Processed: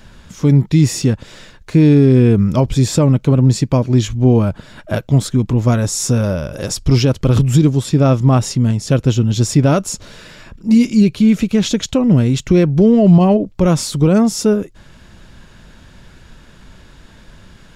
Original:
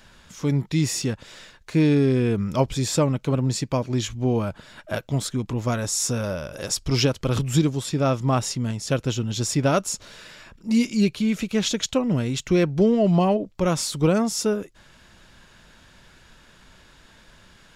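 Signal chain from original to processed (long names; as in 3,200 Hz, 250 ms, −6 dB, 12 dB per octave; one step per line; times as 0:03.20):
brickwall limiter −13.5 dBFS, peak gain reduction 6 dB
low-shelf EQ 430 Hz +9.5 dB
level +4 dB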